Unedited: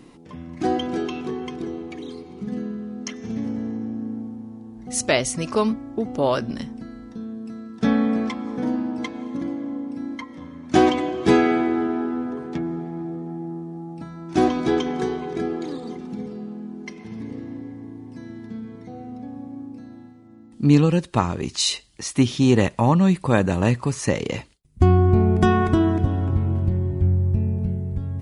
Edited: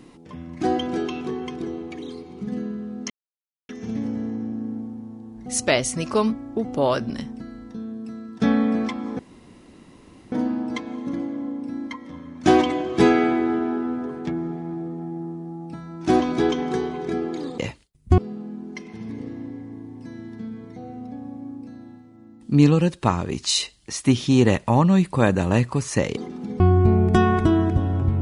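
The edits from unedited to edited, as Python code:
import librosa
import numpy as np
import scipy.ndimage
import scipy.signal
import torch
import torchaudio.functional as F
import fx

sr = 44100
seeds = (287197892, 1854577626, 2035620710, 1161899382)

y = fx.edit(x, sr, fx.insert_silence(at_s=3.1, length_s=0.59),
    fx.insert_room_tone(at_s=8.6, length_s=1.13),
    fx.swap(start_s=15.86, length_s=0.43, other_s=24.28, other_length_s=0.6), tone=tone)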